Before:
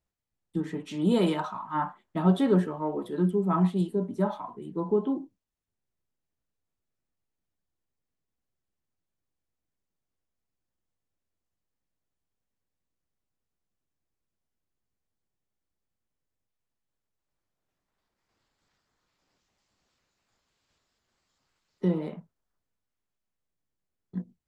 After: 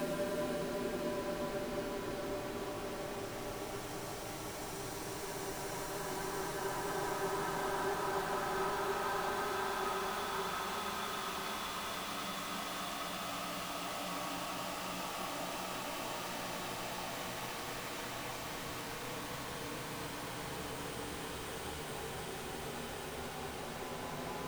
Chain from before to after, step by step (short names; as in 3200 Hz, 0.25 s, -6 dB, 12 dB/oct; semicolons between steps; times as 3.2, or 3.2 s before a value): zero-crossing step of -33 dBFS; spectral gate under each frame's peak -10 dB weak; Paulstretch 33×, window 0.25 s, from 3.99